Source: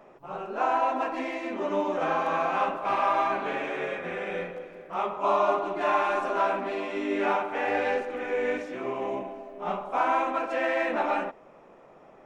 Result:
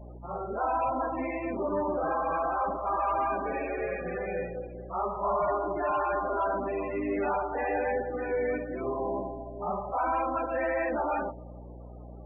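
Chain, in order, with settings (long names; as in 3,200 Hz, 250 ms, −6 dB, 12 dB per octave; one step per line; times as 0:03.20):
high-frequency loss of the air 150 metres
delay with a low-pass on its return 95 ms, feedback 68%, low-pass 600 Hz, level −18.5 dB
soft clipping −25.5 dBFS, distortion −11 dB
mains hum 60 Hz, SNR 15 dB
spectral peaks only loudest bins 32
level +2 dB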